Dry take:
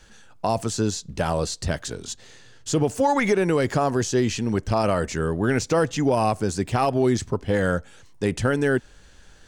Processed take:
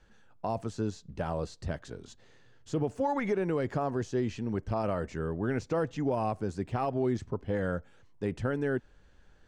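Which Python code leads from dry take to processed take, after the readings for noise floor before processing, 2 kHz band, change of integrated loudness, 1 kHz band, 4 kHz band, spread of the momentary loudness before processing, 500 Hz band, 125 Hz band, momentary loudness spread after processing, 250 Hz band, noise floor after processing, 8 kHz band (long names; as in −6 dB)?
−50 dBFS, −12.0 dB, −9.0 dB, −10.0 dB, −17.5 dB, 8 LU, −9.0 dB, −8.5 dB, 7 LU, −8.5 dB, −59 dBFS, −21.5 dB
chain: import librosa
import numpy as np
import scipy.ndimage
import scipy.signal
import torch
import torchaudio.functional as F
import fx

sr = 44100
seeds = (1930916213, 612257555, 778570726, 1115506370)

y = fx.lowpass(x, sr, hz=1500.0, slope=6)
y = F.gain(torch.from_numpy(y), -8.5).numpy()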